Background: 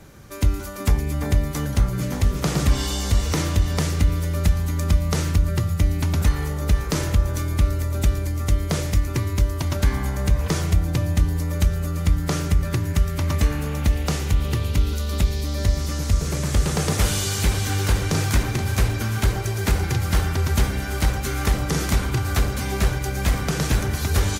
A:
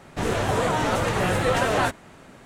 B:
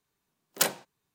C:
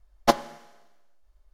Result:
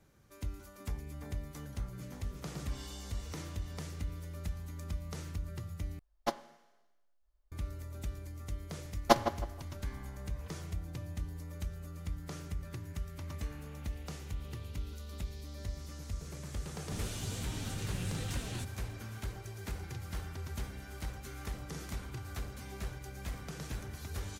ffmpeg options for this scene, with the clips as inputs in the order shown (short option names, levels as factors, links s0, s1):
-filter_complex "[3:a]asplit=2[s0][s1];[0:a]volume=0.1[s2];[s1]asplit=2[s3][s4];[s4]adelay=159,lowpass=f=2000:p=1,volume=0.355,asplit=2[s5][s6];[s6]adelay=159,lowpass=f=2000:p=1,volume=0.28,asplit=2[s7][s8];[s8]adelay=159,lowpass=f=2000:p=1,volume=0.28[s9];[s3][s5][s7][s9]amix=inputs=4:normalize=0[s10];[1:a]acrossover=split=250|3000[s11][s12][s13];[s12]acompressor=threshold=0.00631:ratio=6:attack=3.2:release=140:knee=2.83:detection=peak[s14];[s11][s14][s13]amix=inputs=3:normalize=0[s15];[s2]asplit=2[s16][s17];[s16]atrim=end=5.994[s18];[s0]atrim=end=1.53,asetpts=PTS-STARTPTS,volume=0.2[s19];[s17]atrim=start=7.516[s20];[s10]atrim=end=1.53,asetpts=PTS-STARTPTS,volume=0.596,afade=t=in:d=0.004:c=hsin,afade=t=out:st=1.526:d=0.004:c=hsin,adelay=388962S[s21];[s15]atrim=end=2.45,asetpts=PTS-STARTPTS,volume=0.299,afade=t=in:d=0.004:c=hsin,afade=t=out:st=2.446:d=0.004:c=hsin,adelay=16740[s22];[s18][s19]acrossfade=d=0.004:c1=hsin:c2=hsin[s23];[s23][s20]acrossfade=d=0.004:c1=hsin:c2=hsin[s24];[s24][s21][s22]amix=inputs=3:normalize=0"